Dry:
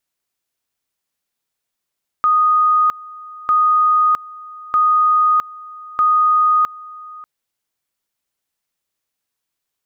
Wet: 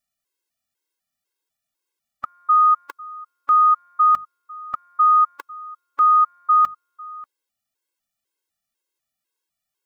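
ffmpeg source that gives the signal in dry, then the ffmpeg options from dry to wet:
-f lavfi -i "aevalsrc='pow(10,(-10.5-21.5*gte(mod(t,1.25),0.66))/20)*sin(2*PI*1240*t)':d=5:s=44100"
-af "bandreject=f=50:t=h:w=6,bandreject=f=100:t=h:w=6,bandreject=f=150:t=h:w=6,bandreject=f=200:t=h:w=6,afftfilt=real='re*gt(sin(2*PI*2*pts/sr)*(1-2*mod(floor(b*sr/1024/280),2)),0)':imag='im*gt(sin(2*PI*2*pts/sr)*(1-2*mod(floor(b*sr/1024/280),2)),0)':win_size=1024:overlap=0.75"

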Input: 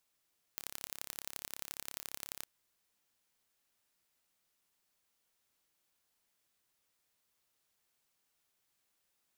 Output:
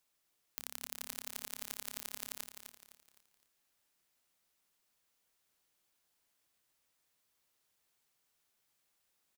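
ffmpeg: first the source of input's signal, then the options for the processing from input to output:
-f lavfi -i "aevalsrc='0.251*eq(mod(n,1278),0)*(0.5+0.5*eq(mod(n,3834),0))':d=1.87:s=44100"
-filter_complex "[0:a]bandreject=f=60:t=h:w=6,bandreject=f=120:t=h:w=6,bandreject=f=180:t=h:w=6,bandreject=f=240:t=h:w=6,asplit=2[s0][s1];[s1]aecho=0:1:256|512|768|1024:0.398|0.151|0.0575|0.0218[s2];[s0][s2]amix=inputs=2:normalize=0"

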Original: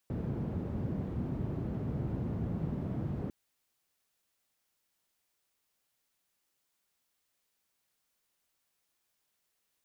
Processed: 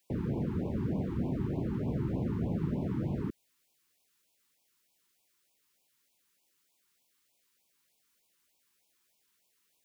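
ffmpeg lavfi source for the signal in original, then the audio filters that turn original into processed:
-f lavfi -i "anoisesrc=c=white:d=3.2:r=44100:seed=1,highpass=f=82,lowpass=f=170,volume=-6.9dB"
-filter_complex "[0:a]acrossover=split=170[s0][s1];[s1]acontrast=33[s2];[s0][s2]amix=inputs=2:normalize=0,afftfilt=real='re*(1-between(b*sr/1024,570*pow(1600/570,0.5+0.5*sin(2*PI*3.3*pts/sr))/1.41,570*pow(1600/570,0.5+0.5*sin(2*PI*3.3*pts/sr))*1.41))':imag='im*(1-between(b*sr/1024,570*pow(1600/570,0.5+0.5*sin(2*PI*3.3*pts/sr))/1.41,570*pow(1600/570,0.5+0.5*sin(2*PI*3.3*pts/sr))*1.41))':win_size=1024:overlap=0.75"

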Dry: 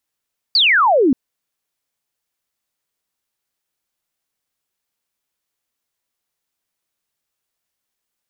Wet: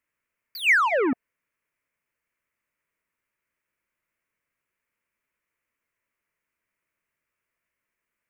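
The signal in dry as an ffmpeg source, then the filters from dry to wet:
-f lavfi -i "aevalsrc='0.316*clip(t/0.002,0,1)*clip((0.58-t)/0.002,0,1)*sin(2*PI*4800*0.58/log(240/4800)*(exp(log(240/4800)*t/0.58)-1))':d=0.58:s=44100"
-af "asoftclip=type=tanh:threshold=0.0891,asuperstop=centerf=780:order=4:qfactor=4.5,highshelf=f=2900:t=q:w=3:g=-9"

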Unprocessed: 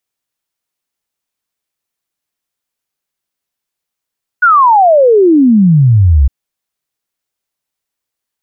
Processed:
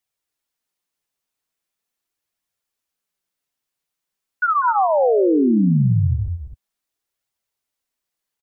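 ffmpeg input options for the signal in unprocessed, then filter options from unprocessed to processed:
-f lavfi -i "aevalsrc='0.668*clip(min(t,1.86-t)/0.01,0,1)*sin(2*PI*1500*1.86/log(63/1500)*(exp(log(63/1500)*t/1.86)-1))':d=1.86:s=44100"
-filter_complex "[0:a]alimiter=limit=0.266:level=0:latency=1:release=18,flanger=delay=0.9:depth=7.1:regen=-23:speed=0.41:shape=triangular,asplit=2[s0][s1];[s1]aecho=0:1:195.3|253.6:0.316|0.355[s2];[s0][s2]amix=inputs=2:normalize=0"

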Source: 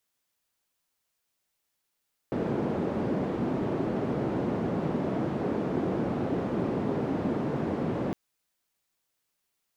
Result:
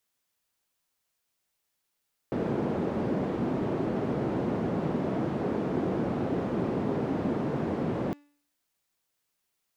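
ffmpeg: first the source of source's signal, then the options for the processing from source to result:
-f lavfi -i "anoisesrc=c=white:d=5.81:r=44100:seed=1,highpass=f=160,lowpass=f=330,volume=-3.8dB"
-af "bandreject=f=289.6:t=h:w=4,bandreject=f=579.2:t=h:w=4,bandreject=f=868.8:t=h:w=4,bandreject=f=1158.4:t=h:w=4,bandreject=f=1448:t=h:w=4,bandreject=f=1737.6:t=h:w=4,bandreject=f=2027.2:t=h:w=4,bandreject=f=2316.8:t=h:w=4,bandreject=f=2606.4:t=h:w=4,bandreject=f=2896:t=h:w=4,bandreject=f=3185.6:t=h:w=4,bandreject=f=3475.2:t=h:w=4,bandreject=f=3764.8:t=h:w=4,bandreject=f=4054.4:t=h:w=4,bandreject=f=4344:t=h:w=4,bandreject=f=4633.6:t=h:w=4,bandreject=f=4923.2:t=h:w=4,bandreject=f=5212.8:t=h:w=4,bandreject=f=5502.4:t=h:w=4,bandreject=f=5792:t=h:w=4,bandreject=f=6081.6:t=h:w=4,bandreject=f=6371.2:t=h:w=4,bandreject=f=6660.8:t=h:w=4,bandreject=f=6950.4:t=h:w=4,bandreject=f=7240:t=h:w=4,bandreject=f=7529.6:t=h:w=4,bandreject=f=7819.2:t=h:w=4,bandreject=f=8108.8:t=h:w=4"

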